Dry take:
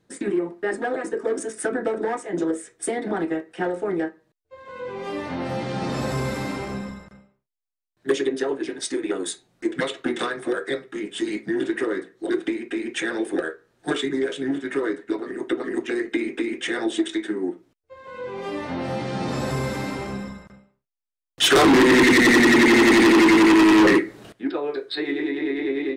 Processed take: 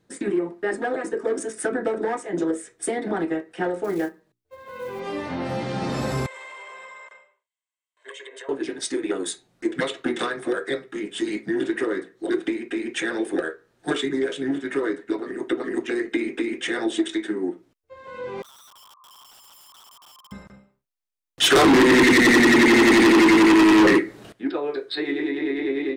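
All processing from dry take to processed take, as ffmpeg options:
ffmpeg -i in.wav -filter_complex "[0:a]asettb=1/sr,asplit=3[link_01][link_02][link_03];[link_01]atrim=end=3.844[link_04];[link_02]atrim=start=3.84:end=5,asetpts=PTS-STARTPTS,afade=type=in:duration=0.004:curve=qsin,afade=type=out:start_time=1.156:duration=0.004:curve=qsin,bandreject=frequency=60:width_type=h:width=6,bandreject=frequency=120:width_type=h:width=6,bandreject=frequency=180:width_type=h:width=6,bandreject=frequency=240:width_type=h:width=6,bandreject=frequency=300:width_type=h:width=6,bandreject=frequency=360:width_type=h:width=6,bandreject=frequency=420:width_type=h:width=6,acrusher=bits=6:mode=log:mix=0:aa=0.000001[link_05];[link_03]atrim=start=4.996[link_06];[link_04][link_05]acrossfade=duration=0.004:curve1=hsin:curve2=qsin[link_07];[link_07][link_06]acrossfade=duration=0.004:curve1=qsin:curve2=hsin,asettb=1/sr,asplit=3[link_08][link_09][link_10];[link_08]atrim=end=6.264[link_11];[link_09]atrim=start=6.26:end=8.49,asetpts=PTS-STARTPTS,afade=type=in:duration=0.004:curve=qsin,afade=type=out:start_time=2.226:duration=0.004:curve=qsin,highpass=frequency=500:width=0.5412,highpass=frequency=500:width=1.3066,equalizer=frequency=1000:width_type=q:width=4:gain=8,equalizer=frequency=2000:width_type=q:width=4:gain=10,equalizer=frequency=3100:width_type=q:width=4:gain=9,equalizer=frequency=5000:width_type=q:width=4:gain=-9,equalizer=frequency=8000:width_type=q:width=4:gain=9,lowpass=frequency=8900:width=0.5412,lowpass=frequency=8900:width=1.3066,aecho=1:1:1.9:0.53,atrim=end_sample=98343,acompressor=threshold=-38dB:ratio=6:attack=3.2:release=140:knee=1:detection=peak[link_12];[link_10]atrim=start=8.486[link_13];[link_11][link_12]acrossfade=duration=0.004:curve1=hsin:curve2=qsin[link_14];[link_14][link_13]acrossfade=duration=0.004:curve1=qsin:curve2=hsin,asettb=1/sr,asplit=3[link_15][link_16][link_17];[link_15]atrim=end=18.424[link_18];[link_16]atrim=start=18.42:end=20.32,asetpts=PTS-STARTPTS,afade=type=in:duration=0.004:curve=qsin,afade=type=out:start_time=1.896:duration=0.004:curve=qsin,asuperpass=centerf=1100:order=8:qfactor=7,aeval=exprs='(mod(188*val(0)+1,2)-1)/188':channel_layout=same[link_19];[link_17]atrim=start=20.316[link_20];[link_18][link_19]acrossfade=duration=0.004:curve1=hsin:curve2=qsin[link_21];[link_21][link_20]acrossfade=duration=0.004:curve1=qsin:curve2=hsin" out.wav

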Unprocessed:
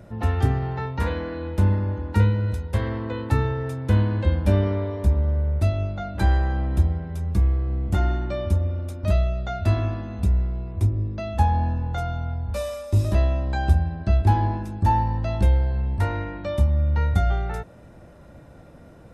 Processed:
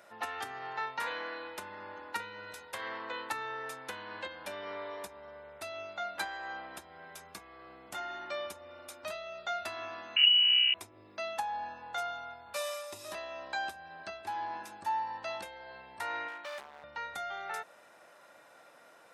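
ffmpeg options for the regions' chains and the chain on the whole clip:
ffmpeg -i in.wav -filter_complex "[0:a]asettb=1/sr,asplit=3[link_01][link_02][link_03];[link_01]atrim=end=10.164[link_04];[link_02]atrim=start=10.16:end=10.74,asetpts=PTS-STARTPTS,afade=type=in:duration=0.004:curve=qsin,afade=type=out:start_time=0.576:duration=0.004:curve=qsin,acontrast=85,lowpass=frequency=2600:width_type=q:width=0.5098,lowpass=frequency=2600:width_type=q:width=0.6013,lowpass=frequency=2600:width_type=q:width=0.9,lowpass=frequency=2600:width_type=q:width=2.563,afreqshift=-3000,asplit=2[link_05][link_06];[link_06]adelay=24,volume=-10dB[link_07];[link_05][link_07]amix=inputs=2:normalize=0,atrim=end_sample=25578[link_08];[link_03]atrim=start=10.736[link_09];[link_04][link_08]acrossfade=duration=0.004:curve1=hsin:curve2=qsin[link_10];[link_10][link_09]acrossfade=duration=0.004:curve1=qsin:curve2=hsin,asettb=1/sr,asplit=3[link_11][link_12][link_13];[link_11]atrim=end=16.284[link_14];[link_12]atrim=start=16.28:end=16.84,asetpts=PTS-STARTPTS,afade=type=in:duration=0.004:curve=qsin,afade=type=out:start_time=0.556:duration=0.004:curve=qsin,lowpass=frequency=3400:poles=1,lowshelf=frequency=370:gain=-8,asoftclip=type=hard:threshold=-33dB[link_15];[link_13]atrim=start=16.836[link_16];[link_14][link_15]acrossfade=duration=0.004:curve1=hsin:curve2=qsin[link_17];[link_17][link_16]acrossfade=duration=0.004:curve1=qsin:curve2=hsin,acompressor=threshold=-22dB:ratio=6,highpass=980,volume=1dB" out.wav

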